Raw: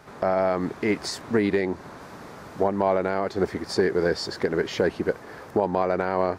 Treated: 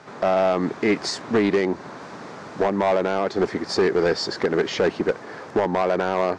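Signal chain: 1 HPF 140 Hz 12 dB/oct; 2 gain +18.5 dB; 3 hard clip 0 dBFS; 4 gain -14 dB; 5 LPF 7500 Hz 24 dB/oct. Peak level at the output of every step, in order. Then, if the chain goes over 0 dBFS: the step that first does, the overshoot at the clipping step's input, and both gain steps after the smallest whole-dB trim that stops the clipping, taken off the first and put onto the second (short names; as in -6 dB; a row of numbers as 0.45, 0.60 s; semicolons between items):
-9.0, +9.5, 0.0, -14.0, -13.5 dBFS; step 2, 9.5 dB; step 2 +8.5 dB, step 4 -4 dB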